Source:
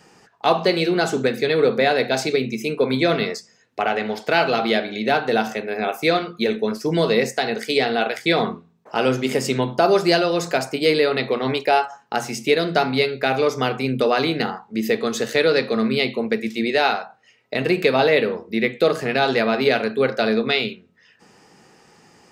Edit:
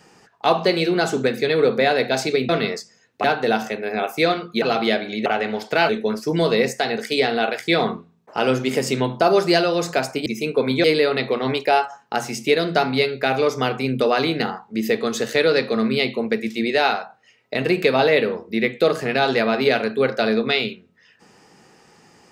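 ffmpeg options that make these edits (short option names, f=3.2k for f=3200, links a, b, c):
-filter_complex "[0:a]asplit=8[a][b][c][d][e][f][g][h];[a]atrim=end=2.492[i];[b]atrim=start=3.068:end=3.822[j];[c]atrim=start=5.088:end=6.472[k];[d]atrim=start=4.448:end=5.092[l];[e]atrim=start=3.818:end=4.452[m];[f]atrim=start=6.468:end=10.842[n];[g]atrim=start=2.488:end=3.072[o];[h]atrim=start=10.838[p];[i][j]acrossfade=d=0.004:c1=hsin:c2=hsin[q];[q][k]acrossfade=d=0.004:c1=hsin:c2=hsin[r];[r][l]acrossfade=d=0.004:c1=hsin:c2=hsin[s];[s][m]acrossfade=d=0.004:c1=hsin:c2=hsin[t];[t][n]acrossfade=d=0.004:c1=hsin:c2=hsin[u];[u][o]acrossfade=d=0.004:c1=hsin:c2=hsin[v];[v][p]acrossfade=d=0.004:c1=hsin:c2=hsin"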